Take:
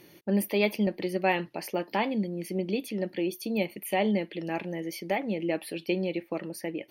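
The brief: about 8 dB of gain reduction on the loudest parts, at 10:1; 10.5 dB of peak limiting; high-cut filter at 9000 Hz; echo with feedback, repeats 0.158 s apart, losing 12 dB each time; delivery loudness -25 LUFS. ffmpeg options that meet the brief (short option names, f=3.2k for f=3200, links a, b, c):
-af "lowpass=9k,acompressor=threshold=-29dB:ratio=10,alimiter=level_in=5.5dB:limit=-24dB:level=0:latency=1,volume=-5.5dB,aecho=1:1:158|316|474:0.251|0.0628|0.0157,volume=14dB"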